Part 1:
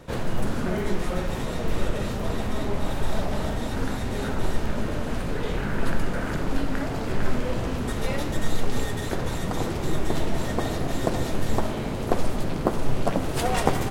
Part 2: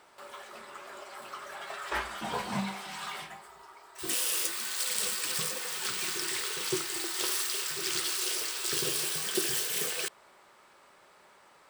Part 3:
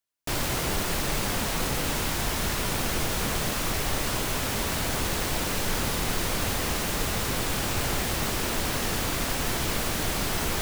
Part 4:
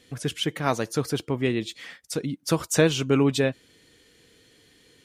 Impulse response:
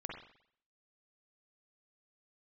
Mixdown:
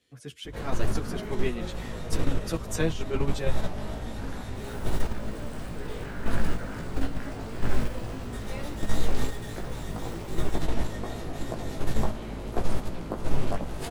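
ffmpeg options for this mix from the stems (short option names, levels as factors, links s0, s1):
-filter_complex "[0:a]aeval=exprs='val(0)+0.02*(sin(2*PI*50*n/s)+sin(2*PI*2*50*n/s)/2+sin(2*PI*3*50*n/s)/3+sin(2*PI*4*50*n/s)/4+sin(2*PI*5*50*n/s)/5)':c=same,flanger=delay=17:depth=2.1:speed=2.8,adelay=450,volume=1.19[s0];[1:a]adelay=550,volume=0.126[s1];[3:a]dynaudnorm=f=350:g=5:m=3.76,asplit=2[s2][s3];[s3]adelay=10.9,afreqshift=-0.54[s4];[s2][s4]amix=inputs=2:normalize=1,volume=0.631[s5];[s0][s1][s5]amix=inputs=3:normalize=0,agate=range=0.447:threshold=0.1:ratio=16:detection=peak,acrossover=split=140[s6][s7];[s7]acompressor=threshold=0.0316:ratio=2[s8];[s6][s8]amix=inputs=2:normalize=0"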